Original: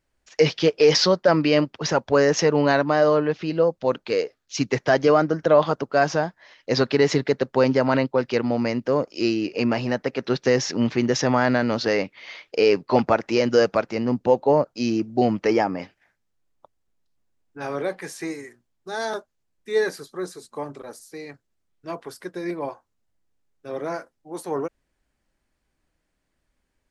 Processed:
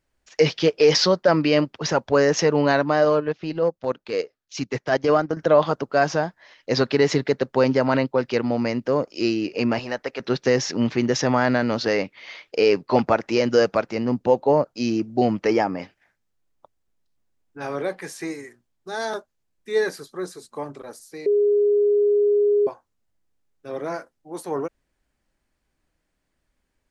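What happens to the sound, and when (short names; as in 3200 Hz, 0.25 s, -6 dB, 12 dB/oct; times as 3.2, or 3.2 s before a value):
3.05–5.37 transient shaper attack -6 dB, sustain -11 dB
9.79–10.2 bell 160 Hz -13.5 dB 1.9 oct
21.26–22.67 bleep 412 Hz -15 dBFS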